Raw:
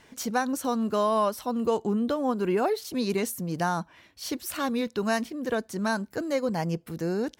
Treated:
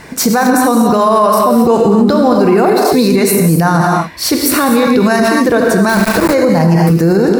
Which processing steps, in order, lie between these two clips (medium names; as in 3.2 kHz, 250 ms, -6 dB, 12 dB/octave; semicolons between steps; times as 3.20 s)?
1.92–2.44 s: peaking EQ 4.8 kHz +10.5 dB 0.42 oct; gated-style reverb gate 280 ms flat, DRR 2 dB; 5.89–6.34 s: small samples zeroed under -28.5 dBFS; graphic EQ with 31 bands 160 Hz +5 dB, 3.15 kHz -11 dB, 6.3 kHz -5 dB; loudness maximiser +23 dB; trim -1 dB